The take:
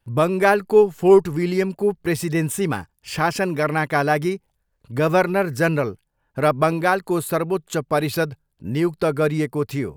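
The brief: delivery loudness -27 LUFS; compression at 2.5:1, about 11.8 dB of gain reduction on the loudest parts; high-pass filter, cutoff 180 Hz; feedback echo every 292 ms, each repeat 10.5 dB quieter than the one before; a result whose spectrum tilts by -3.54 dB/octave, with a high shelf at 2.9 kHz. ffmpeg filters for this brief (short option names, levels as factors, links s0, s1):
-af "highpass=180,highshelf=f=2900:g=-8,acompressor=threshold=0.0447:ratio=2.5,aecho=1:1:292|584|876:0.299|0.0896|0.0269,volume=1.26"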